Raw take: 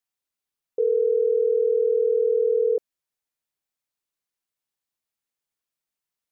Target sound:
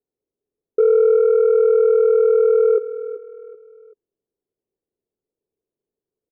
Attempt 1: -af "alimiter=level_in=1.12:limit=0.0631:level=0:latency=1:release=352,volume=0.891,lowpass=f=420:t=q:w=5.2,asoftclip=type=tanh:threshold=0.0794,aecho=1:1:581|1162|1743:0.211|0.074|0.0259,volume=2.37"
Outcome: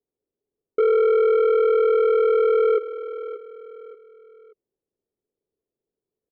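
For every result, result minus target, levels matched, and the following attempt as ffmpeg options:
echo 198 ms late; saturation: distortion +10 dB
-af "alimiter=level_in=1.12:limit=0.0631:level=0:latency=1:release=352,volume=0.891,lowpass=f=420:t=q:w=5.2,asoftclip=type=tanh:threshold=0.0794,aecho=1:1:383|766|1149:0.211|0.074|0.0259,volume=2.37"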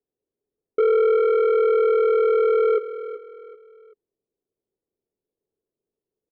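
saturation: distortion +10 dB
-af "alimiter=level_in=1.12:limit=0.0631:level=0:latency=1:release=352,volume=0.891,lowpass=f=420:t=q:w=5.2,asoftclip=type=tanh:threshold=0.2,aecho=1:1:383|766|1149:0.211|0.074|0.0259,volume=2.37"

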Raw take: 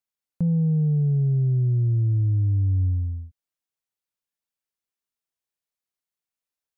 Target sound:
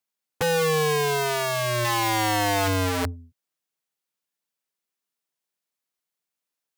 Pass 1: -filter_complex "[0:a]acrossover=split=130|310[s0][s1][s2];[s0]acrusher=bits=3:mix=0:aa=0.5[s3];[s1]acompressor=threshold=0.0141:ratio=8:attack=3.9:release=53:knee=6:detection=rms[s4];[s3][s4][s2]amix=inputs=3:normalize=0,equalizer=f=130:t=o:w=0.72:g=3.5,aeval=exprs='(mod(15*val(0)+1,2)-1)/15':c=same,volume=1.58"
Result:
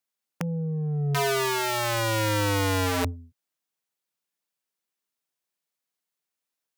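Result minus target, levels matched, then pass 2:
compression: peak gain reduction +9.5 dB
-filter_complex "[0:a]acrossover=split=130|310[s0][s1][s2];[s0]acrusher=bits=3:mix=0:aa=0.5[s3];[s1]acompressor=threshold=0.0501:ratio=8:attack=3.9:release=53:knee=6:detection=rms[s4];[s3][s4][s2]amix=inputs=3:normalize=0,equalizer=f=130:t=o:w=0.72:g=3.5,aeval=exprs='(mod(15*val(0)+1,2)-1)/15':c=same,volume=1.58"

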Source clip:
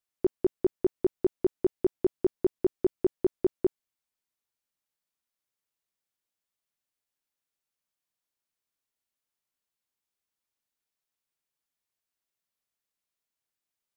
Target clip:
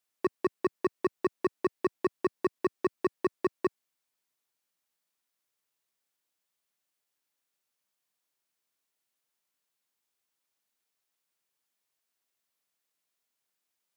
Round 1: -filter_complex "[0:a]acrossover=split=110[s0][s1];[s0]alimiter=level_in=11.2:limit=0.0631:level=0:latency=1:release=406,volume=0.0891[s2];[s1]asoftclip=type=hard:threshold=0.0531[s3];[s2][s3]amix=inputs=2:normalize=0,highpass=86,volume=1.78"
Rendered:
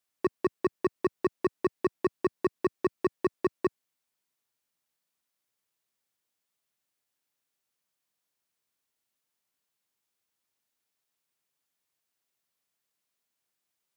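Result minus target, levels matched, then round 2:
125 Hz band +3.0 dB
-filter_complex "[0:a]acrossover=split=110[s0][s1];[s0]alimiter=level_in=11.2:limit=0.0631:level=0:latency=1:release=406,volume=0.0891[s2];[s1]asoftclip=type=hard:threshold=0.0531[s3];[s2][s3]amix=inputs=2:normalize=0,highpass=86,lowshelf=f=170:g=-7,volume=1.78"

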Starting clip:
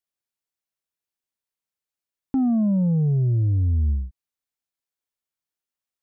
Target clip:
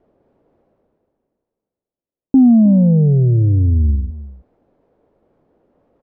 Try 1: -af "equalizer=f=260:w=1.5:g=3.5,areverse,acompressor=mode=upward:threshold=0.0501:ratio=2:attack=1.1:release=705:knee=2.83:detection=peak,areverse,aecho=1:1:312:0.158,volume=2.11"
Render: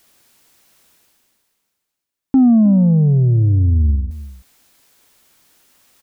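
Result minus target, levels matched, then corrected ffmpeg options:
500 Hz band -3.0 dB
-af "lowpass=f=520:t=q:w=1.8,equalizer=f=260:w=1.5:g=3.5,areverse,acompressor=mode=upward:threshold=0.0501:ratio=2:attack=1.1:release=705:knee=2.83:detection=peak,areverse,aecho=1:1:312:0.158,volume=2.11"

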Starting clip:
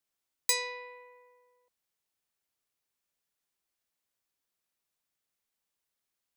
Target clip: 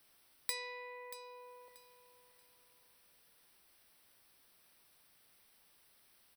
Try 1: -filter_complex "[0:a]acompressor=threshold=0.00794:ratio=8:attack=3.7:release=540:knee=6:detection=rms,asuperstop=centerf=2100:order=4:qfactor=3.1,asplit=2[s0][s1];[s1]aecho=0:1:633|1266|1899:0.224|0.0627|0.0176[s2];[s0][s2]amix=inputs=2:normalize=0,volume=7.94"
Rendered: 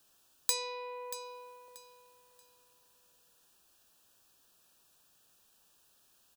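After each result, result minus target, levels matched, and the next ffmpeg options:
2 kHz band -8.5 dB; compression: peak gain reduction -7.5 dB
-filter_complex "[0:a]acompressor=threshold=0.00794:ratio=8:attack=3.7:release=540:knee=6:detection=rms,asuperstop=centerf=6900:order=4:qfactor=3.1,asplit=2[s0][s1];[s1]aecho=0:1:633|1266|1899:0.224|0.0627|0.0176[s2];[s0][s2]amix=inputs=2:normalize=0,volume=7.94"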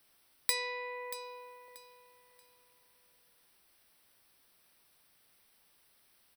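compression: peak gain reduction -7.5 dB
-filter_complex "[0:a]acompressor=threshold=0.00299:ratio=8:attack=3.7:release=540:knee=6:detection=rms,asuperstop=centerf=6900:order=4:qfactor=3.1,asplit=2[s0][s1];[s1]aecho=0:1:633|1266|1899:0.224|0.0627|0.0176[s2];[s0][s2]amix=inputs=2:normalize=0,volume=7.94"

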